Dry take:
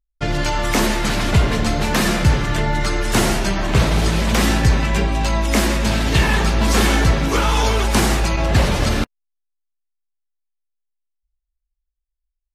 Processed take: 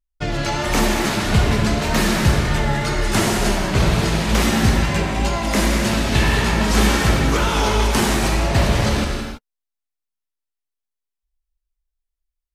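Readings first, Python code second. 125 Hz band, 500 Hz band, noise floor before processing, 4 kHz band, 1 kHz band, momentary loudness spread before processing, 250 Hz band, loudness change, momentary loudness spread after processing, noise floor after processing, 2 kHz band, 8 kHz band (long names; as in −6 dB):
−0.5 dB, 0.0 dB, −78 dBFS, 0.0 dB, 0.0 dB, 4 LU, +0.5 dB, −0.5 dB, 4 LU, −83 dBFS, 0.0 dB, 0.0 dB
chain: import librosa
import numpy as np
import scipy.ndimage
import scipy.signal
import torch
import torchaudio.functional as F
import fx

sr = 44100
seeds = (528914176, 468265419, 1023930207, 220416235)

y = fx.wow_flutter(x, sr, seeds[0], rate_hz=2.1, depth_cents=71.0)
y = fx.rev_gated(y, sr, seeds[1], gate_ms=350, shape='flat', drr_db=1.5)
y = y * 10.0 ** (-2.5 / 20.0)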